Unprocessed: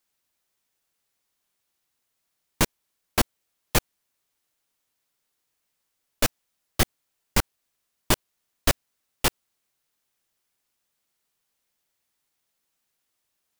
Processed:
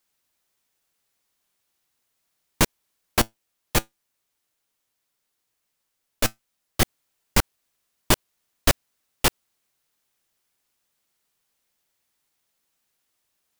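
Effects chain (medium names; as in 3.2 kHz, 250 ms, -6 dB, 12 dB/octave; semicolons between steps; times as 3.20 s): 3.20–6.82 s: feedback comb 110 Hz, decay 0.15 s, harmonics all, mix 40%; trim +2.5 dB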